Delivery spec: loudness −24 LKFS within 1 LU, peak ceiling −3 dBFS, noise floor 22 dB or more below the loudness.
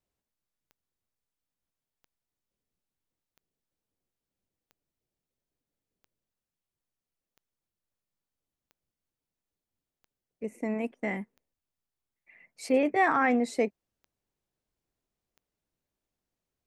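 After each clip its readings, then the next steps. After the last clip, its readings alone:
number of clicks 12; integrated loudness −28.0 LKFS; sample peak −12.5 dBFS; target loudness −24.0 LKFS
→ click removal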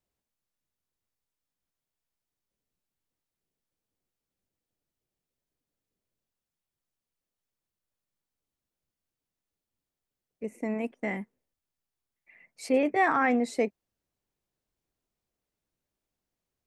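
number of clicks 0; integrated loudness −28.0 LKFS; sample peak −12.5 dBFS; target loudness −24.0 LKFS
→ level +4 dB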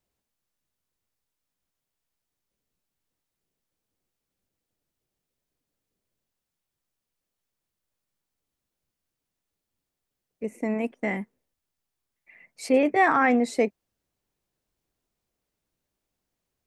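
integrated loudness −24.0 LKFS; sample peak −8.5 dBFS; background noise floor −85 dBFS

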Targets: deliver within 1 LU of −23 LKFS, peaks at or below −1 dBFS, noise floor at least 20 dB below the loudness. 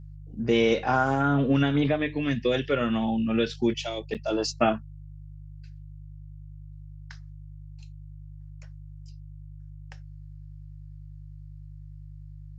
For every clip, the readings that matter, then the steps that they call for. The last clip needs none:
number of dropouts 1; longest dropout 7.9 ms; mains hum 50 Hz; hum harmonics up to 150 Hz; level of the hum −41 dBFS; integrated loudness −25.5 LKFS; sample peak −9.0 dBFS; target loudness −23.0 LKFS
→ repair the gap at 0:04.14, 7.9 ms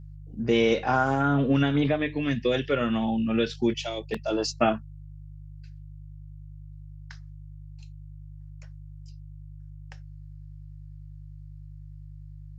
number of dropouts 0; mains hum 50 Hz; hum harmonics up to 150 Hz; level of the hum −41 dBFS
→ hum removal 50 Hz, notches 3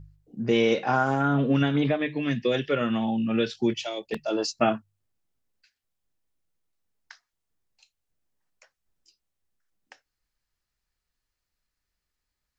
mains hum none found; integrated loudness −25.5 LKFS; sample peak −9.5 dBFS; target loudness −23.0 LKFS
→ level +2.5 dB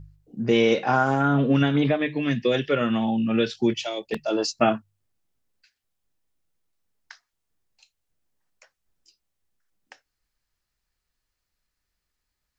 integrated loudness −23.0 LKFS; sample peak −7.0 dBFS; background noise floor −82 dBFS

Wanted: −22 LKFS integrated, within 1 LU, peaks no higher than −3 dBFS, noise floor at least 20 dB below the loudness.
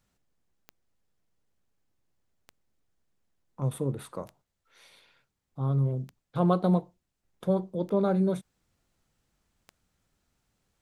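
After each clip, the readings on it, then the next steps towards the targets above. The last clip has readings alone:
number of clicks 6; integrated loudness −29.0 LKFS; sample peak −11.0 dBFS; target loudness −22.0 LKFS
→ click removal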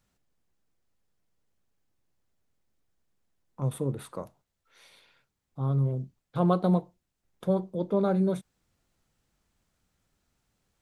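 number of clicks 0; integrated loudness −29.0 LKFS; sample peak −11.0 dBFS; target loudness −22.0 LKFS
→ level +7 dB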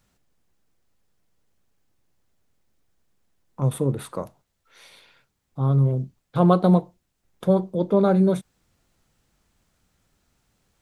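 integrated loudness −22.0 LKFS; sample peak −4.0 dBFS; background noise floor −75 dBFS

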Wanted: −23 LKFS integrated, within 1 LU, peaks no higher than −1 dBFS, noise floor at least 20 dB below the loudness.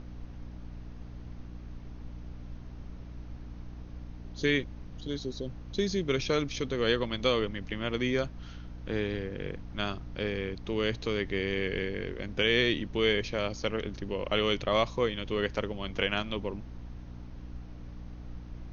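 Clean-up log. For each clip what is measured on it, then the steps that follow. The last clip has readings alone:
mains hum 60 Hz; hum harmonics up to 300 Hz; level of the hum −42 dBFS; background noise floor −45 dBFS; target noise floor −51 dBFS; integrated loudness −31.0 LKFS; sample peak −12.0 dBFS; target loudness −23.0 LKFS
→ hum removal 60 Hz, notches 5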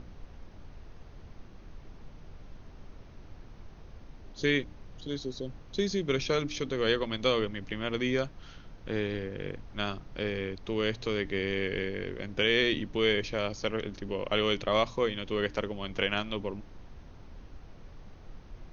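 mains hum none found; background noise floor −50 dBFS; target noise floor −51 dBFS
→ noise reduction from a noise print 6 dB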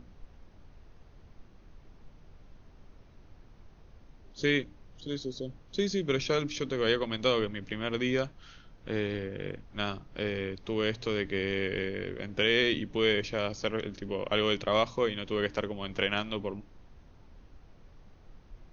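background noise floor −56 dBFS; integrated loudness −31.0 LKFS; sample peak −12.0 dBFS; target loudness −23.0 LKFS
→ level +8 dB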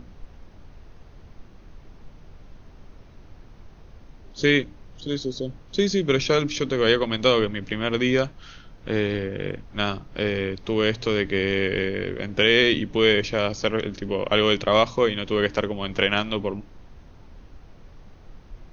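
integrated loudness −23.0 LKFS; sample peak −4.0 dBFS; background noise floor −48 dBFS

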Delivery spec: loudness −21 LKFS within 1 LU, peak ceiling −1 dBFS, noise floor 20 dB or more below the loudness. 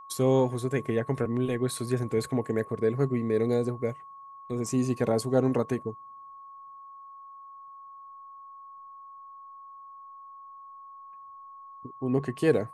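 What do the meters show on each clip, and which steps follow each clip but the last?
interfering tone 1,100 Hz; level of the tone −44 dBFS; integrated loudness −28.0 LKFS; sample peak −10.0 dBFS; target loudness −21.0 LKFS
→ notch filter 1,100 Hz, Q 30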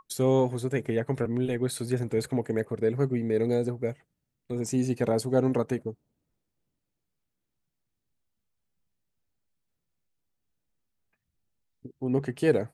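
interfering tone none found; integrated loudness −28.0 LKFS; sample peak −10.0 dBFS; target loudness −21.0 LKFS
→ level +7 dB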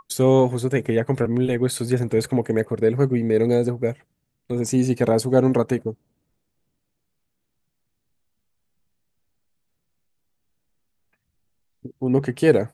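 integrated loudness −21.0 LKFS; sample peak −3.0 dBFS; background noise floor −75 dBFS

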